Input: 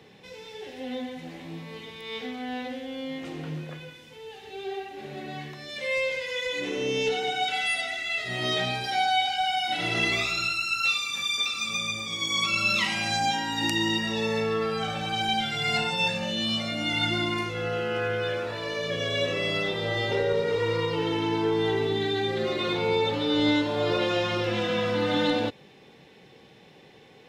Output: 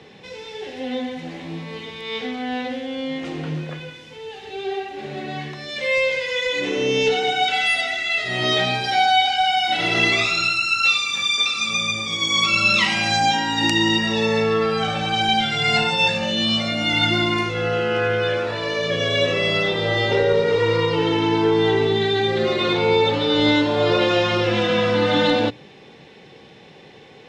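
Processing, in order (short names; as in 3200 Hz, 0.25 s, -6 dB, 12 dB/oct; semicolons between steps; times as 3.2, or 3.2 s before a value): LPF 7300 Hz 12 dB/oct; notches 60/120/180/240/300 Hz; gain +7.5 dB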